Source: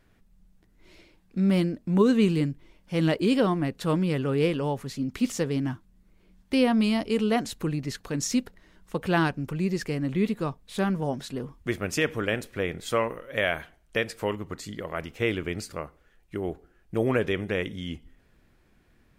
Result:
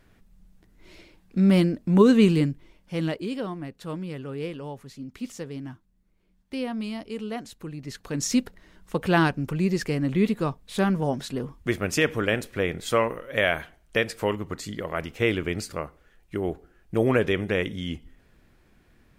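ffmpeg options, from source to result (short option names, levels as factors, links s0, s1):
-af "volume=5.96,afade=t=out:st=2.28:d=1.01:silence=0.237137,afade=t=in:st=7.74:d=0.65:silence=0.266073"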